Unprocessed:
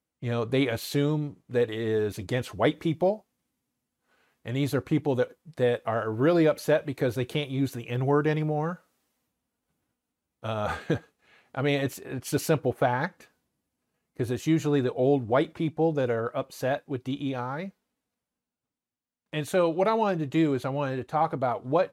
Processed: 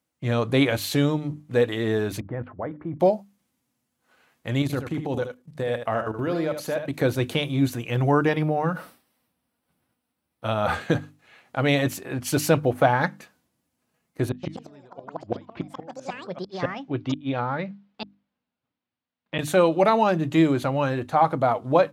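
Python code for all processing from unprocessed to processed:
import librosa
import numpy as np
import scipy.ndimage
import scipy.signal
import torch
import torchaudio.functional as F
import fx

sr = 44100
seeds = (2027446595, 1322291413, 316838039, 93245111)

y = fx.chain(x, sr, fx.lowpass(hz=1600.0, slope=24),
    fx.low_shelf(hz=86.0, db=3.0),
    fx.level_steps(step_db=17), at=(2.2, 3.0))
y = fx.chain(y, sr, fx.level_steps(step_db=15),
    fx.echo_single(ms=76, db=-8.0), at=(4.62, 6.94))
y = fx.chain(y, sr, fx.peak_eq(hz=6800.0, db=-13.0, octaves=0.3),
    fx.sustainer(db_per_s=140.0), at=(8.29, 10.74))
y = fx.chain(y, sr, fx.lowpass(hz=4100.0, slope=24),
    fx.gate_flip(shuts_db=-20.0, range_db=-30),
    fx.echo_pitch(ms=141, semitones=6, count=2, db_per_echo=-6.0), at=(14.29, 19.39))
y = scipy.signal.sosfilt(scipy.signal.butter(2, 76.0, 'highpass', fs=sr, output='sos'), y)
y = fx.peak_eq(y, sr, hz=420.0, db=-6.5, octaves=0.25)
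y = fx.hum_notches(y, sr, base_hz=50, count=6)
y = F.gain(torch.from_numpy(y), 6.0).numpy()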